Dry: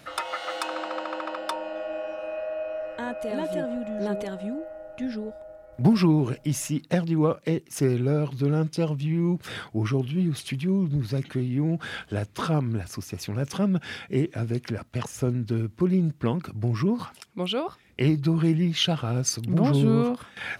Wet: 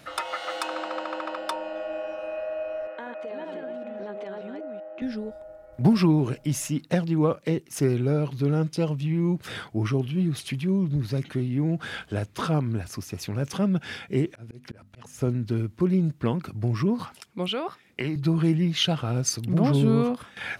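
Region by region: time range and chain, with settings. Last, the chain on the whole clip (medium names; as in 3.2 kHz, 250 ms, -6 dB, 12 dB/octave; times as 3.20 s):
2.87–5.02 s: chunks repeated in reverse 193 ms, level -5 dB + band-pass 330–3000 Hz + compression 4:1, threshold -32 dBFS
14.26–15.21 s: hum notches 50/100/150/200/250 Hz + slow attack 376 ms
17.48–18.16 s: high-pass 140 Hz + dynamic bell 1.8 kHz, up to +6 dB, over -47 dBFS, Q 1.2 + compression 5:1, threshold -24 dBFS
whole clip: none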